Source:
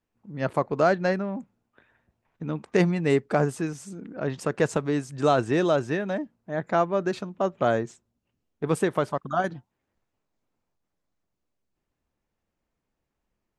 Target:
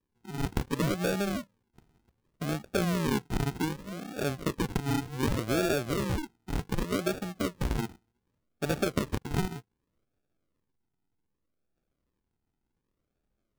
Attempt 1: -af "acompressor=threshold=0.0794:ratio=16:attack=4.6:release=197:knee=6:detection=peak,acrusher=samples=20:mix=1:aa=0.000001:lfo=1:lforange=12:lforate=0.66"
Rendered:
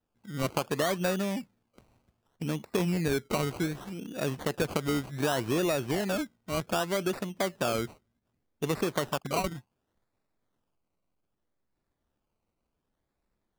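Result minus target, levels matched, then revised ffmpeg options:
decimation with a swept rate: distortion -14 dB
-af "acompressor=threshold=0.0794:ratio=16:attack=4.6:release=197:knee=6:detection=peak,acrusher=samples=61:mix=1:aa=0.000001:lfo=1:lforange=36.6:lforate=0.66"

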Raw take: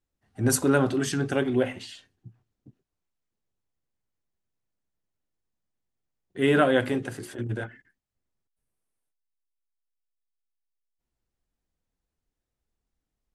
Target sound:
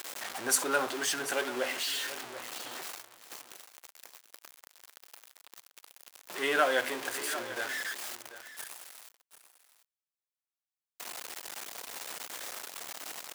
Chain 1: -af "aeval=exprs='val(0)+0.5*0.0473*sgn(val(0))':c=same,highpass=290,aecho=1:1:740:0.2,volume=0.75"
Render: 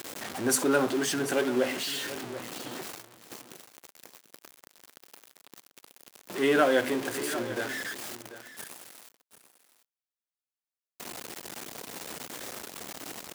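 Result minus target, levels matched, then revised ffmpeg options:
250 Hz band +9.0 dB
-af "aeval=exprs='val(0)+0.5*0.0473*sgn(val(0))':c=same,highpass=690,aecho=1:1:740:0.2,volume=0.75"

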